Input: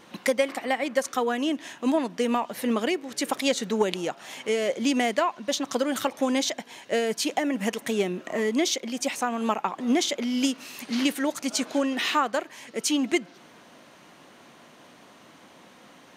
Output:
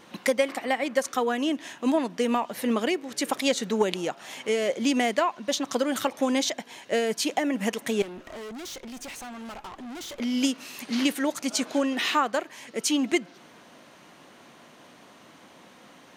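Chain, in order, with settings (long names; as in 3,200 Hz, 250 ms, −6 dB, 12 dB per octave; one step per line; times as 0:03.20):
0:08.02–0:10.20: tube saturation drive 37 dB, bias 0.6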